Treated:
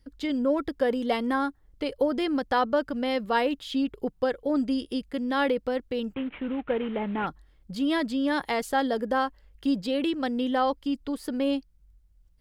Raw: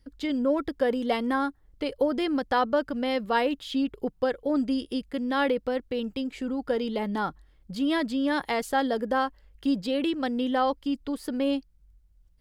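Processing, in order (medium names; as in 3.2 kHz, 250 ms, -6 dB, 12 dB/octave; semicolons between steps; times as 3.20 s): 6.14–7.27 s: CVSD coder 16 kbps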